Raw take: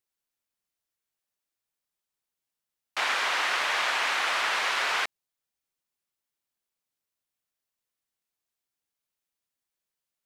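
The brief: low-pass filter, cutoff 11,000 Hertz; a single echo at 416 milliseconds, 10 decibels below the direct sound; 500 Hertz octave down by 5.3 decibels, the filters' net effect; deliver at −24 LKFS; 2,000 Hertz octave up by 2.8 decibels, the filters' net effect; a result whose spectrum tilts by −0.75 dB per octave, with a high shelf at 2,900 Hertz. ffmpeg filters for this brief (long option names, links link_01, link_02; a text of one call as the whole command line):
ffmpeg -i in.wav -af "lowpass=11000,equalizer=frequency=500:width_type=o:gain=-7.5,equalizer=frequency=2000:width_type=o:gain=6.5,highshelf=frequency=2900:gain=-7,aecho=1:1:416:0.316,volume=0.5dB" out.wav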